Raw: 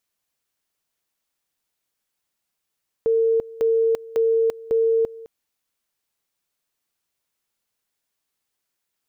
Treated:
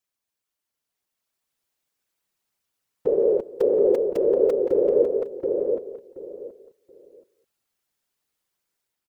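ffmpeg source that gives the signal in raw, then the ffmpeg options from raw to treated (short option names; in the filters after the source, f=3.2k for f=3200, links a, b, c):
-f lavfi -i "aevalsrc='pow(10,(-15.5-20*gte(mod(t,0.55),0.34))/20)*sin(2*PI*453*t)':d=2.2:s=44100"
-filter_complex "[0:a]dynaudnorm=f=800:g=3:m=5.5dB,afftfilt=real='hypot(re,im)*cos(2*PI*random(0))':imag='hypot(re,im)*sin(2*PI*random(1))':win_size=512:overlap=0.75,asplit=2[a][b];[b]adelay=727,lowpass=f=1.3k:p=1,volume=-3.5dB,asplit=2[c][d];[d]adelay=727,lowpass=f=1.3k:p=1,volume=0.23,asplit=2[e][f];[f]adelay=727,lowpass=f=1.3k:p=1,volume=0.23[g];[c][e][g]amix=inputs=3:normalize=0[h];[a][h]amix=inputs=2:normalize=0"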